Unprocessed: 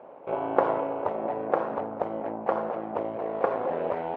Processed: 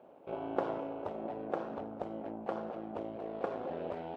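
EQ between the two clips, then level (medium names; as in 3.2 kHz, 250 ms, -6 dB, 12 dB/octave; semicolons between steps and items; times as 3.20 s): graphic EQ 125/250/500/1000/2000 Hz -8/-3/-9/-12/-11 dB; +1.5 dB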